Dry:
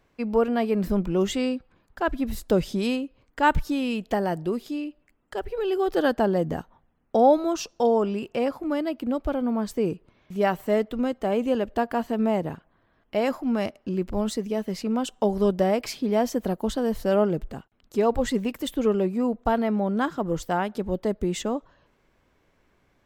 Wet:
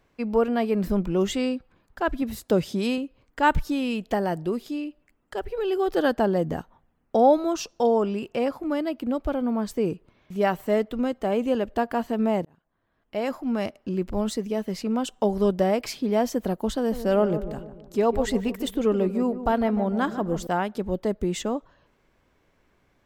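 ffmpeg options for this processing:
-filter_complex "[0:a]asettb=1/sr,asplit=3[a][b][c];[a]atrim=end=2.224[d];[b]atrim=start=2.22:end=2.98,asetpts=PTS-STARTPTS,afade=t=in:d=0.004:c=qsin,afade=t=out:st=0.756:d=0.004:c=qsin,highpass=81[e];[c]atrim=start=2.976[f];[d][e]acrossfade=d=0.004:c1=hsin:c2=qsin[g];[g][f]acrossfade=d=0.004:c1=qsin:c2=hsin,asettb=1/sr,asplit=3[h][i][j];[h]atrim=end=16.764[k];[i]atrim=start=16.76:end=20.47,asetpts=PTS-STARTPTS,afade=t=in:d=0.004:c=qsin,afade=t=out:st=3.706:d=0.004:c=qsin,asplit=2[l][m];[m]adelay=149,lowpass=f=1.1k:p=1,volume=-10.5dB,asplit=2[n][o];[o]adelay=149,lowpass=f=1.1k:p=1,volume=0.53,asplit=2[p][q];[q]adelay=149,lowpass=f=1.1k:p=1,volume=0.53,asplit=2[r][s];[s]adelay=149,lowpass=f=1.1k:p=1,volume=0.53,asplit=2[t][u];[u]adelay=149,lowpass=f=1.1k:p=1,volume=0.53,asplit=2[v][w];[w]adelay=149,lowpass=f=1.1k:p=1,volume=0.53[x];[l][n][p][r][t][v][x]amix=inputs=7:normalize=0,atrim=end_sample=163611[y];[j]atrim=start=20.466[z];[k][y]acrossfade=d=0.004:c1=hsin:c2=qsin[aa];[aa][z]acrossfade=d=0.004:c1=qsin:c2=hsin,asplit=2[ab][ac];[ab]atrim=end=12.45,asetpts=PTS-STARTPTS,afade=t=out:st=12.446:d=0.004:c=hsin[ad];[ac]atrim=start=12.45,asetpts=PTS-STARTPTS,afade=t=in:d=1.65:c=qsin[ae];[ad][ae]concat=n=2:v=0:a=1"

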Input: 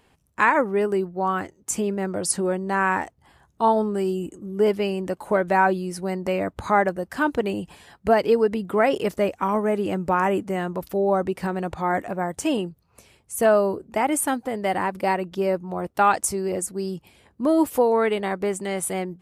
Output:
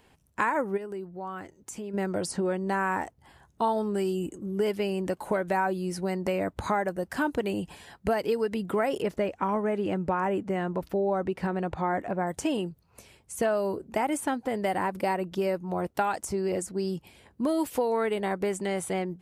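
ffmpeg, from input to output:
-filter_complex "[0:a]asplit=3[a][b][c];[a]afade=t=out:st=0.76:d=0.02[d];[b]acompressor=threshold=-44dB:ratio=2:attack=3.2:release=140:knee=1:detection=peak,afade=t=in:st=0.76:d=0.02,afade=t=out:st=1.93:d=0.02[e];[c]afade=t=in:st=1.93:d=0.02[f];[d][e][f]amix=inputs=3:normalize=0,asettb=1/sr,asplit=3[g][h][i];[g]atrim=end=9.024[j];[h]atrim=start=9.02:end=12.27,asetpts=PTS-STARTPTS,afade=t=in:d=0.004:c=qsin,afade=t=out:st=3.246:d=0.004:c=qsin,lowpass=f=2.3k:p=1[k];[i]atrim=start=12.266[l];[j][k]acrossfade=d=0.004:c1=hsin:c2=qsin[m];[m][l]acrossfade=d=0.004:c1=qsin:c2=hsin,acrossover=split=1600|6800[n][o][p];[n]acompressor=threshold=-25dB:ratio=4[q];[o]acompressor=threshold=-39dB:ratio=4[r];[p]acompressor=threshold=-44dB:ratio=4[s];[q][r][s]amix=inputs=3:normalize=0,bandreject=f=1.2k:w=16"

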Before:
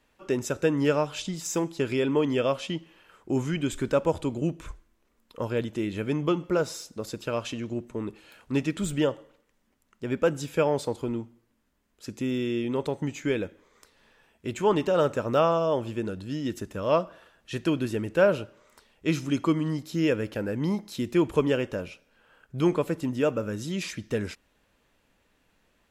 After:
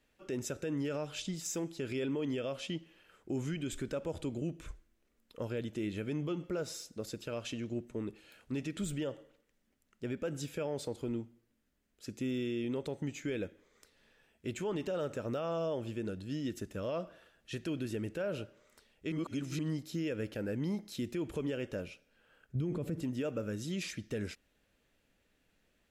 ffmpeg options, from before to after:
-filter_complex "[0:a]asettb=1/sr,asplit=3[a][b][c];[a]atrim=end=22.554[d];[b]atrim=start=22.55:end=23.02,asetpts=PTS-STARTPTS,afade=t=in:d=0.004:c=qsin,afade=t=out:st=0.466:d=0.004:c=qsin,equalizer=f=110:w=0.32:g=15[e];[c]atrim=start=23.016[f];[d][e]acrossfade=d=0.004:c1=hsin:c2=qsin[g];[g][f]acrossfade=d=0.004:c1=qsin:c2=hsin,asplit=3[h][i][j];[h]atrim=end=19.122[k];[i]atrim=start=19.118:end=19.592,asetpts=PTS-STARTPTS,areverse[l];[j]atrim=start=19.588[m];[k][l]acrossfade=d=0.004:c1=hsin:c2=hsin[n];[n][m]acrossfade=d=0.004:c1=hsin:c2=hsin,equalizer=f=1k:w=2.3:g=-8,alimiter=limit=-22.5dB:level=0:latency=1:release=72,volume=-5.5dB"

